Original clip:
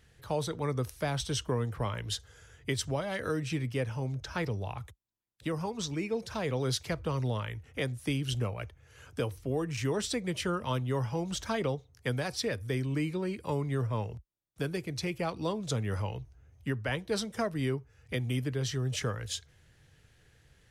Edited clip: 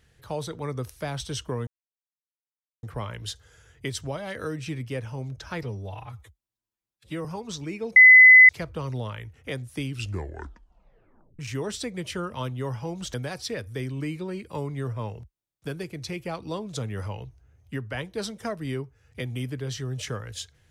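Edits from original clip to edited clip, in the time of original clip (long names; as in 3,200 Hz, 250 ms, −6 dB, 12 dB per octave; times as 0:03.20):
0:01.67: splice in silence 1.16 s
0:04.47–0:05.55: time-stretch 1.5×
0:06.26–0:06.79: beep over 2,020 Hz −7.5 dBFS
0:08.15: tape stop 1.54 s
0:11.44–0:12.08: remove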